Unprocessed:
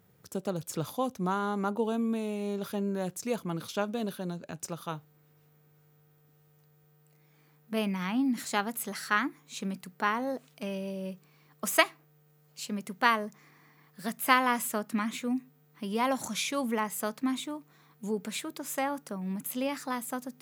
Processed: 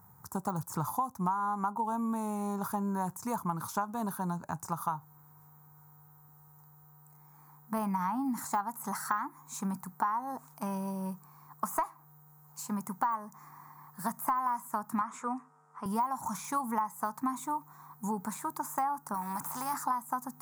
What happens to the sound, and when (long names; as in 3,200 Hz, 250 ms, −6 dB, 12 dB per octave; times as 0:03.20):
0:15.01–0:15.86: loudspeaker in its box 280–7,800 Hz, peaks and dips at 300 Hz −9 dB, 440 Hz +8 dB, 630 Hz +3 dB, 1,300 Hz +8 dB, 4,200 Hz −9 dB, 6,200 Hz −5 dB
0:19.14–0:19.74: every bin compressed towards the loudest bin 2 to 1
whole clip: de-essing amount 95%; drawn EQ curve 120 Hz 0 dB, 550 Hz −15 dB, 920 Hz +12 dB, 3,000 Hz −23 dB, 6,800 Hz −1 dB, 16,000 Hz +4 dB; downward compressor 8 to 1, threshold −35 dBFS; level +6.5 dB